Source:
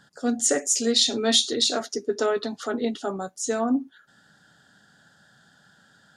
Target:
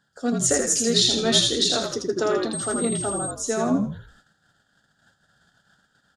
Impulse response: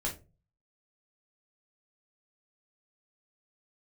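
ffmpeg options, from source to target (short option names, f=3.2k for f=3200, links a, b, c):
-filter_complex "[0:a]asplit=6[a][b][c][d][e][f];[b]adelay=81,afreqshift=-54,volume=-3.5dB[g];[c]adelay=162,afreqshift=-108,volume=-12.1dB[h];[d]adelay=243,afreqshift=-162,volume=-20.8dB[i];[e]adelay=324,afreqshift=-216,volume=-29.4dB[j];[f]adelay=405,afreqshift=-270,volume=-38dB[k];[a][g][h][i][j][k]amix=inputs=6:normalize=0,agate=range=-12dB:threshold=-54dB:ratio=16:detection=peak,asettb=1/sr,asplit=3[l][m][n];[l]atrim=end=2.534[o];[m]atrim=start=2.53:end=3.31,asetpts=PTS-STARTPTS,afade=t=in:d=0.004:c=qsin,afade=t=out:st=0.776:d=0.004:c=qsin,aeval=exprs='val(0)+0.0398*sin(2*PI*8400*n/s)':c=same[p];[n]atrim=start=3.306[q];[o][p]acrossfade=d=0.004:c1=hsin:c2=qsin[r];[r][q]acrossfade=d=0.004:c1=qsin:c2=hsin"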